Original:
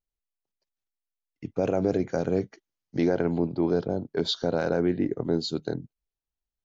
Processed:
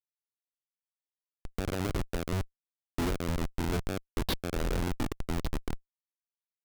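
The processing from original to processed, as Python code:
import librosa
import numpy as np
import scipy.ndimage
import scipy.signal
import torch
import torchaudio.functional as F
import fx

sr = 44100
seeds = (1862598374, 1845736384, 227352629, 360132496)

y = fx.schmitt(x, sr, flips_db=-23.0)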